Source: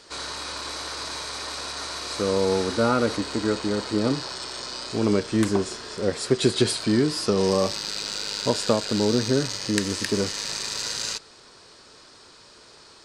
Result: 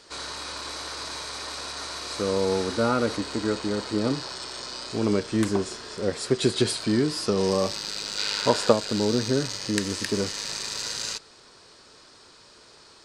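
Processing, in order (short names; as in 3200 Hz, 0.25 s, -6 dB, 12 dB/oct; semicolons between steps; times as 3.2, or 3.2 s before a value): 8.17–8.71 bell 2800 Hz -> 730 Hz +8 dB 2.6 oct; gain -2 dB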